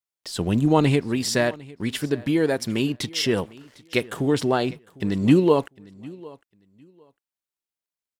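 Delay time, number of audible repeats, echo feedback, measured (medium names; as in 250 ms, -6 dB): 753 ms, 1, no regular repeats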